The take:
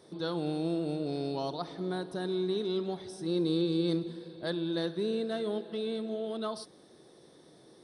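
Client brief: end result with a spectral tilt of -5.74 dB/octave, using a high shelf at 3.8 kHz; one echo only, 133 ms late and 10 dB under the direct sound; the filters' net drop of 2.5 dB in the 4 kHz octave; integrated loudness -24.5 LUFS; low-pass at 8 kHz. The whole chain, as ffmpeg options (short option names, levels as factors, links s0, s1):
-af "lowpass=8000,highshelf=f=3800:g=5.5,equalizer=f=4000:t=o:g=-5.5,aecho=1:1:133:0.316,volume=2.66"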